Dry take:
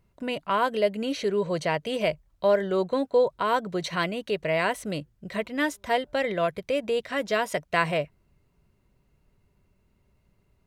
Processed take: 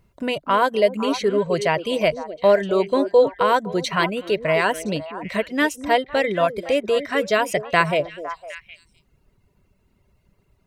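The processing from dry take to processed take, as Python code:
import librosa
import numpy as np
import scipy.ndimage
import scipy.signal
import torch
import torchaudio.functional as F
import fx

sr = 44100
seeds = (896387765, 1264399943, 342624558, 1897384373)

y = fx.dereverb_blind(x, sr, rt60_s=1.0)
y = fx.echo_stepped(y, sr, ms=254, hz=360.0, octaves=1.4, feedback_pct=70, wet_db=-7.5)
y = F.gain(torch.from_numpy(y), 6.5).numpy()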